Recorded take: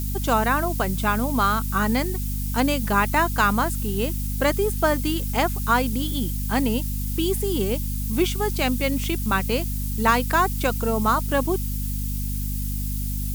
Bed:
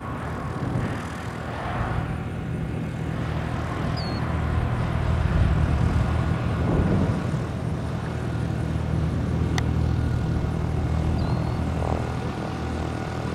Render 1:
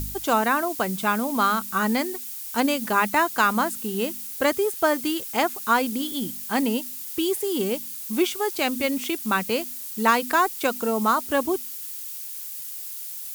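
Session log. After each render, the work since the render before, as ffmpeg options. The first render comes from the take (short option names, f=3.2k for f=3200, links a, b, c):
-af "bandreject=f=50:t=h:w=4,bandreject=f=100:t=h:w=4,bandreject=f=150:t=h:w=4,bandreject=f=200:t=h:w=4,bandreject=f=250:t=h:w=4"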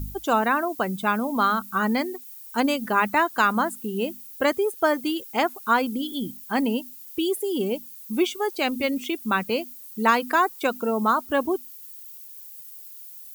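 -af "afftdn=nr=13:nf=-35"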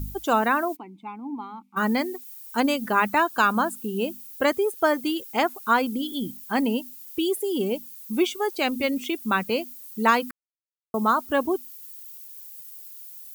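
-filter_complex "[0:a]asplit=3[a][b][c];[a]afade=t=out:st=0.75:d=0.02[d];[b]asplit=3[e][f][g];[e]bandpass=f=300:t=q:w=8,volume=0dB[h];[f]bandpass=f=870:t=q:w=8,volume=-6dB[i];[g]bandpass=f=2.24k:t=q:w=8,volume=-9dB[j];[h][i][j]amix=inputs=3:normalize=0,afade=t=in:st=0.75:d=0.02,afade=t=out:st=1.76:d=0.02[k];[c]afade=t=in:st=1.76:d=0.02[l];[d][k][l]amix=inputs=3:normalize=0,asettb=1/sr,asplit=3[m][n][o];[m]atrim=end=3.164[p];[n]atrim=start=3.16:end=4.21,asetpts=PTS-STARTPTS,afade=t=in:d=0.004:c=qsin,afade=t=out:st=1.046:d=0.004:c=qsin,asuperstop=centerf=2000:order=4:qfactor=6.3[q];[o]atrim=start=4.206[r];[p][q]acrossfade=d=0.004:c1=hsin:c2=qsin[s];[s][r]acrossfade=d=0.004:c1=qsin:c2=hsin,asplit=3[t][u][v];[t]atrim=end=10.31,asetpts=PTS-STARTPTS,afade=t=out:st=10.306:d=0.004:c=hsin[w];[u]atrim=start=10.31:end=10.94,asetpts=PTS-STARTPTS,volume=0[x];[v]atrim=start=10.94,asetpts=PTS-STARTPTS,afade=t=in:d=0.004:c=hsin[y];[w][x][y]concat=n=3:v=0:a=1"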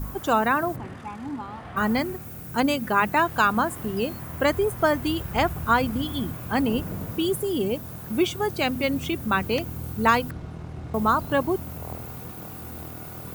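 -filter_complex "[1:a]volume=-11.5dB[a];[0:a][a]amix=inputs=2:normalize=0"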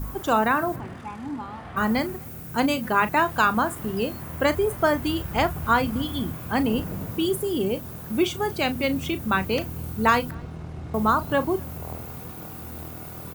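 -filter_complex "[0:a]asplit=2[a][b];[b]adelay=37,volume=-13dB[c];[a][c]amix=inputs=2:normalize=0,asplit=2[d][e];[e]adelay=256.6,volume=-28dB,highshelf=f=4k:g=-5.77[f];[d][f]amix=inputs=2:normalize=0"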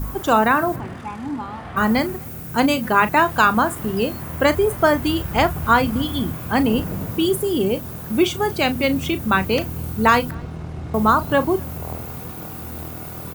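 -af "volume=5dB,alimiter=limit=-2dB:level=0:latency=1"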